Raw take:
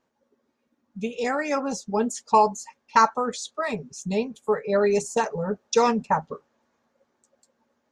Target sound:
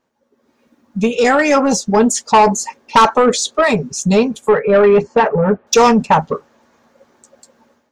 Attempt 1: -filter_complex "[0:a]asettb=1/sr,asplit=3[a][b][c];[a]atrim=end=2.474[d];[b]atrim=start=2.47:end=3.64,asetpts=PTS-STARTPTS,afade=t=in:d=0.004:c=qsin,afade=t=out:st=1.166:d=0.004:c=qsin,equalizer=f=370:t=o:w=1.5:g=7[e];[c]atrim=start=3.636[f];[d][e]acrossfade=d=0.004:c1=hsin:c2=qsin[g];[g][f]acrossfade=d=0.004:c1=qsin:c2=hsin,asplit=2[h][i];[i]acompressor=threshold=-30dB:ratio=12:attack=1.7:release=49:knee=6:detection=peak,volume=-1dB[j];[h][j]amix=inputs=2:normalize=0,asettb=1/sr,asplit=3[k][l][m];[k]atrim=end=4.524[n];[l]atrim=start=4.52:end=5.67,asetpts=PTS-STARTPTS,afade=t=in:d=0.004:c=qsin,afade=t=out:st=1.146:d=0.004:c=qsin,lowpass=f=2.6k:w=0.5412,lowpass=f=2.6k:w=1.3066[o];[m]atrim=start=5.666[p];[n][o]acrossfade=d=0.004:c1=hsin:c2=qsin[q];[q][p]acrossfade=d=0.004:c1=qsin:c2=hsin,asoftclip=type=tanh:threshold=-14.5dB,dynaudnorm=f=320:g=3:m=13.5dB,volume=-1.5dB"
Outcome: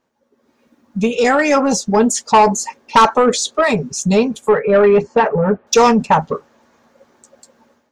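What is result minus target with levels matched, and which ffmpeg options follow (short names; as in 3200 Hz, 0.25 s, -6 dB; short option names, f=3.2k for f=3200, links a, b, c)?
compressor: peak gain reduction +7 dB
-filter_complex "[0:a]asettb=1/sr,asplit=3[a][b][c];[a]atrim=end=2.474[d];[b]atrim=start=2.47:end=3.64,asetpts=PTS-STARTPTS,afade=t=in:d=0.004:c=qsin,afade=t=out:st=1.166:d=0.004:c=qsin,equalizer=f=370:t=o:w=1.5:g=7[e];[c]atrim=start=3.636[f];[d][e]acrossfade=d=0.004:c1=hsin:c2=qsin[g];[g][f]acrossfade=d=0.004:c1=qsin:c2=hsin,asplit=2[h][i];[i]acompressor=threshold=-22.5dB:ratio=12:attack=1.7:release=49:knee=6:detection=peak,volume=-1dB[j];[h][j]amix=inputs=2:normalize=0,asettb=1/sr,asplit=3[k][l][m];[k]atrim=end=4.524[n];[l]atrim=start=4.52:end=5.67,asetpts=PTS-STARTPTS,afade=t=in:d=0.004:c=qsin,afade=t=out:st=1.146:d=0.004:c=qsin,lowpass=f=2.6k:w=0.5412,lowpass=f=2.6k:w=1.3066[o];[m]atrim=start=5.666[p];[n][o]acrossfade=d=0.004:c1=hsin:c2=qsin[q];[q][p]acrossfade=d=0.004:c1=qsin:c2=hsin,asoftclip=type=tanh:threshold=-14.5dB,dynaudnorm=f=320:g=3:m=13.5dB,volume=-1.5dB"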